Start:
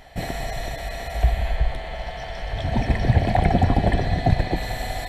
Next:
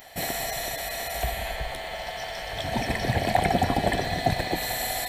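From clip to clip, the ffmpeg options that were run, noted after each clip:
-af "aemphasis=mode=production:type=bsi"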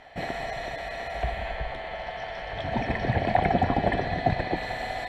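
-af "lowpass=2.4k"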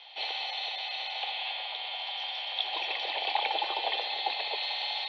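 -af "aexciter=amount=12.7:drive=8:freq=2.8k,highpass=f=390:t=q:w=0.5412,highpass=f=390:t=q:w=1.307,lowpass=f=3.6k:t=q:w=0.5176,lowpass=f=3.6k:t=q:w=0.7071,lowpass=f=3.6k:t=q:w=1.932,afreqshift=92,volume=-7.5dB"

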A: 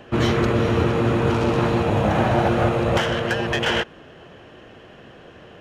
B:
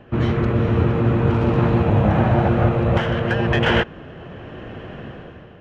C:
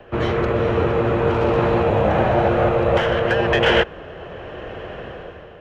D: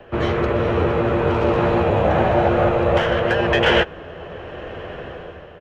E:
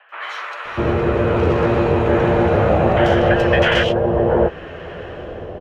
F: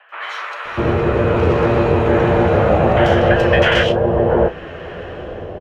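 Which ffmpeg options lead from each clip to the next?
-af "bass=f=250:g=7,treble=f=4k:g=-15,dynaudnorm=f=130:g=9:m=12.5dB,volume=-4dB"
-filter_complex "[0:a]equalizer=f=125:t=o:w=1:g=-7,equalizer=f=250:t=o:w=1:g=-9,equalizer=f=500:t=o:w=1:g=5,acrossover=split=140|650|1700[a][b][c][d];[a]asoftclip=type=tanh:threshold=-27.5dB[e];[c]alimiter=limit=-21.5dB:level=0:latency=1[f];[e][b][f][d]amix=inputs=4:normalize=0,volume=3.5dB"
-filter_complex "[0:a]asplit=2[a][b];[b]adelay=12,volume=-10.5dB[c];[a][c]amix=inputs=2:normalize=0"
-filter_complex "[0:a]acrossover=split=990|3100[a][b][c];[c]adelay=90[d];[a]adelay=650[e];[e][b][d]amix=inputs=3:normalize=0,volume=3dB"
-filter_complex "[0:a]asplit=2[a][b];[b]adelay=33,volume=-13dB[c];[a][c]amix=inputs=2:normalize=0,volume=1.5dB"

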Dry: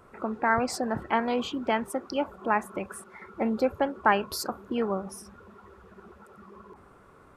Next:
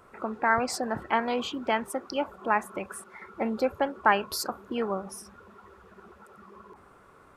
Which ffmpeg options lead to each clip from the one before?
-af "lowshelf=f=460:g=-5.5,volume=1.5dB"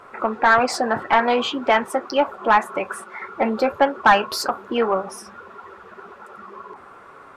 -filter_complex "[0:a]flanger=delay=7.1:depth=1.8:regen=-47:speed=1.8:shape=sinusoidal,asplit=2[a][b];[b]highpass=f=720:p=1,volume=15dB,asoftclip=type=tanh:threshold=-11dB[c];[a][c]amix=inputs=2:normalize=0,lowpass=f=2.3k:p=1,volume=-6dB,volume=8.5dB"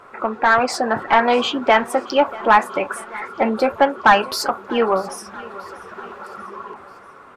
-af "dynaudnorm=f=220:g=9:m=6.5dB,aecho=1:1:638|1276|1914|2552:0.0891|0.0463|0.0241|0.0125"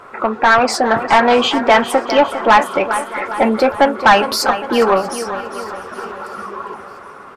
-af "aecho=1:1:405|810|1215|1620|2025:0.224|0.112|0.056|0.028|0.014,acontrast=72,volume=-1dB"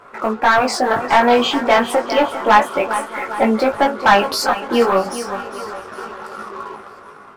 -filter_complex "[0:a]flanger=delay=18:depth=3.1:speed=0.31,asplit=2[a][b];[b]acrusher=bits=4:mix=0:aa=0.5,volume=-11dB[c];[a][c]amix=inputs=2:normalize=0,volume=-1.5dB"

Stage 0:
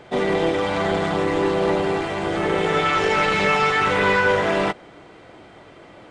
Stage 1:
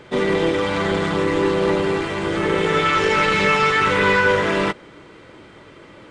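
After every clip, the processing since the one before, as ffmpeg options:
-af "equalizer=f=720:t=o:w=0.29:g=-13,volume=2.5dB"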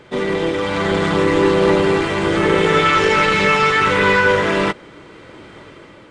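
-af "dynaudnorm=f=560:g=3:m=11.5dB,volume=-1dB"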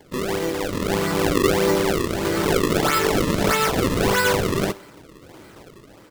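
-filter_complex "[0:a]aecho=1:1:64|128|192|256:0.0891|0.0508|0.029|0.0165,acrossover=split=4400[a][b];[a]acrusher=samples=33:mix=1:aa=0.000001:lfo=1:lforange=52.8:lforate=1.6[c];[c][b]amix=inputs=2:normalize=0,volume=-5dB"

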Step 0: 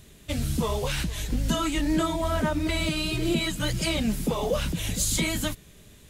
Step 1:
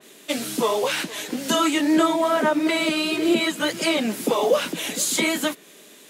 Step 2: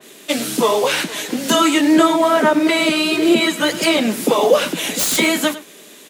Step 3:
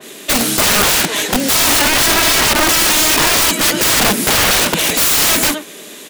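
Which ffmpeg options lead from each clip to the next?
-af "highpass=f=270:w=0.5412,highpass=f=270:w=1.3066,adynamicequalizer=threshold=0.00708:dfrequency=2900:dqfactor=0.7:tfrequency=2900:tqfactor=0.7:attack=5:release=100:ratio=0.375:range=3:mode=cutabove:tftype=highshelf,volume=8dB"
-filter_complex "[0:a]acrossover=split=150|3000[a][b][c];[c]aeval=exprs='(mod(7.5*val(0)+1,2)-1)/7.5':c=same[d];[a][b][d]amix=inputs=3:normalize=0,aecho=1:1:101:0.168,volume=6dB"
-af "aeval=exprs='(mod(5.96*val(0)+1,2)-1)/5.96':c=same,volume=8dB"

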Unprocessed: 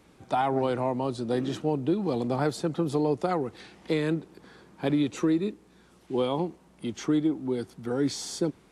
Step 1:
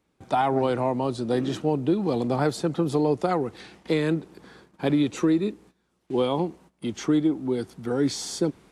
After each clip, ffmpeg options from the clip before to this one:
-af "agate=range=-17dB:threshold=-52dB:ratio=16:detection=peak,volume=3dB"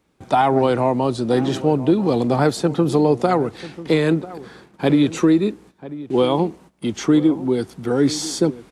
-filter_complex "[0:a]asplit=2[a][b];[b]adelay=991.3,volume=-16dB,highshelf=f=4k:g=-22.3[c];[a][c]amix=inputs=2:normalize=0,volume=6.5dB"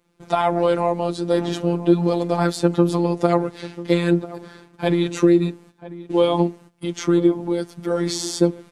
-af "afftfilt=real='hypot(re,im)*cos(PI*b)':imag='0':win_size=1024:overlap=0.75,volume=2dB"

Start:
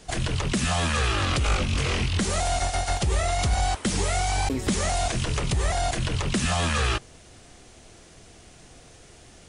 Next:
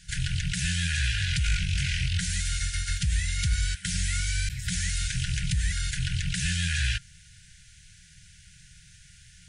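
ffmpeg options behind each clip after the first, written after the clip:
-af "afftfilt=real='re*(1-between(b*sr/4096,190,1400))':imag='im*(1-between(b*sr/4096,190,1400))':win_size=4096:overlap=0.75,volume=-1.5dB"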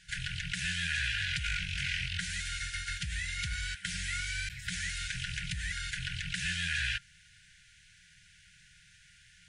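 -af "bass=f=250:g=-13,treble=f=4k:g=-10"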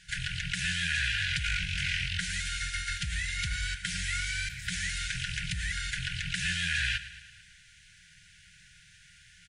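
-af "aecho=1:1:111|222|333|444|555|666:0.178|0.103|0.0598|0.0347|0.0201|0.0117,acontrast=58,volume=-3.5dB"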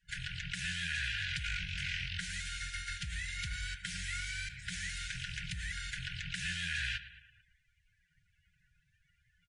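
-af "afftdn=nr=22:nf=-50,volume=-6.5dB"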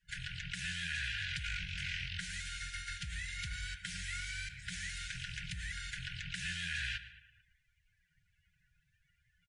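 -filter_complex "[0:a]asplit=2[a][b];[b]adelay=145.8,volume=-21dB,highshelf=f=4k:g=-3.28[c];[a][c]amix=inputs=2:normalize=0,volume=-2dB"

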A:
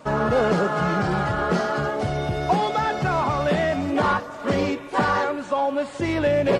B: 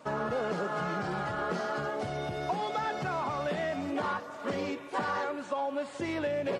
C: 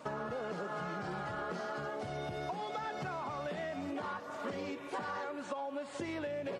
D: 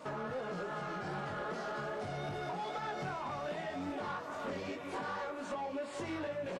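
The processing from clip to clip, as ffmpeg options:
-af "acompressor=threshold=-21dB:ratio=6,highpass=f=190:p=1,volume=-6.5dB"
-af "acompressor=threshold=-38dB:ratio=6,volume=1.5dB"
-filter_complex "[0:a]flanger=delay=19:depth=3.6:speed=2.5,asoftclip=type=tanh:threshold=-37.5dB,asplit=2[a][b];[b]aecho=0:1:1050:0.316[c];[a][c]amix=inputs=2:normalize=0,volume=4.5dB"

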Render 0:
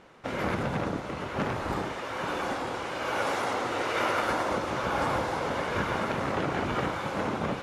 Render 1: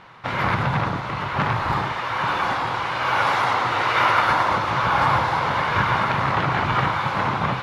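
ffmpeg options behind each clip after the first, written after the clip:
-af "equalizer=f=125:t=o:w=1:g=11,equalizer=f=250:t=o:w=1:g=-4,equalizer=f=500:t=o:w=1:g=-4,equalizer=f=1k:t=o:w=1:g=10,equalizer=f=2k:t=o:w=1:g=5,equalizer=f=4k:t=o:w=1:g=7,equalizer=f=8k:t=o:w=1:g=-6,volume=2.5dB"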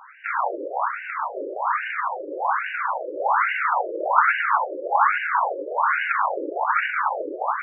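-af "afftfilt=real='re*between(b*sr/1024,410*pow(2100/410,0.5+0.5*sin(2*PI*1.2*pts/sr))/1.41,410*pow(2100/410,0.5+0.5*sin(2*PI*1.2*pts/sr))*1.41)':imag='im*between(b*sr/1024,410*pow(2100/410,0.5+0.5*sin(2*PI*1.2*pts/sr))/1.41,410*pow(2100/410,0.5+0.5*sin(2*PI*1.2*pts/sr))*1.41)':win_size=1024:overlap=0.75,volume=4dB"

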